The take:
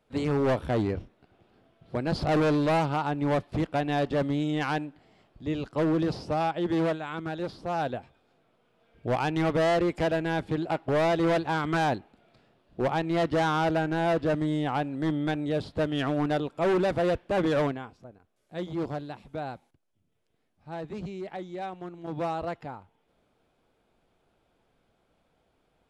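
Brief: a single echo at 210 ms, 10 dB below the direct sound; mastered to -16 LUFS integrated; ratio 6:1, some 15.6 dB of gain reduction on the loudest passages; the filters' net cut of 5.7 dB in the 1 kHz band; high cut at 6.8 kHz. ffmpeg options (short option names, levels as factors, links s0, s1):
-af "lowpass=6800,equalizer=f=1000:t=o:g=-8.5,acompressor=threshold=0.00891:ratio=6,aecho=1:1:210:0.316,volume=23.7"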